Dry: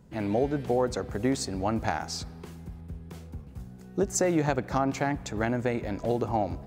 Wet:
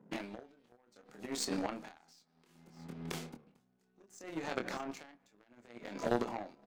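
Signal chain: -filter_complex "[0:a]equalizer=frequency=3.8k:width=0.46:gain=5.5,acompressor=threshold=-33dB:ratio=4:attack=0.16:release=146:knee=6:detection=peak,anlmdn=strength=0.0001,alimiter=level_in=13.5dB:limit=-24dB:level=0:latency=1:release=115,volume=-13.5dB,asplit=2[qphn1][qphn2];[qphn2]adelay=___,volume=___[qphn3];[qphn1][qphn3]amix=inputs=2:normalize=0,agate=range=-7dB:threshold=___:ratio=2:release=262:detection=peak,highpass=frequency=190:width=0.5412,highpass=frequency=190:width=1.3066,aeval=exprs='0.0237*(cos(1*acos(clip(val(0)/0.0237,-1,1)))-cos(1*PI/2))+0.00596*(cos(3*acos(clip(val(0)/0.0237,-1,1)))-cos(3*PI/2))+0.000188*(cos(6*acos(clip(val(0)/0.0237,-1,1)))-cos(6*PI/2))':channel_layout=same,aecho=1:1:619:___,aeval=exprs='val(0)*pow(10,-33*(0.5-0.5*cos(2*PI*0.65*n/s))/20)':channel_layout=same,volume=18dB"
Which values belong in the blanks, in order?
25, -4dB, -45dB, 0.0668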